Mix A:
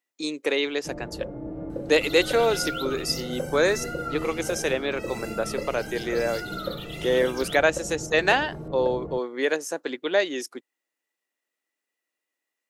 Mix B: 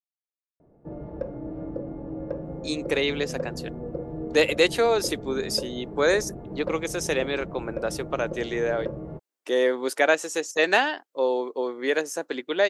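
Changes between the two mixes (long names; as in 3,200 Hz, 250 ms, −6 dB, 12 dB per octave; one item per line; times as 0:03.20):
speech: entry +2.45 s
second sound: muted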